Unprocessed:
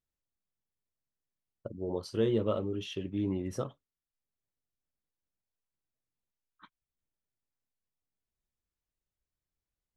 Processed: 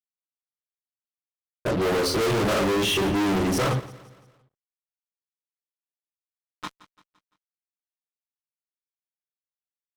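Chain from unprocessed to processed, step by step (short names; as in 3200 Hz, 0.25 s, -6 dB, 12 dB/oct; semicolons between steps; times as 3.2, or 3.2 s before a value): dynamic EQ 1400 Hz, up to +7 dB, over -51 dBFS, Q 1.1; reverb RT60 0.30 s, pre-delay 3 ms, DRR -5 dB; fuzz box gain 42 dB, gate -49 dBFS; feedback echo 0.171 s, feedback 47%, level -19 dB; gain -8.5 dB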